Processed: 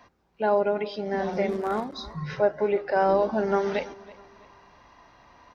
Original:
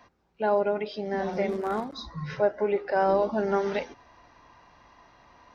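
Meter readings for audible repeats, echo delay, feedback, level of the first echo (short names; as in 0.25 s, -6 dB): 2, 0.329 s, 36%, -20.5 dB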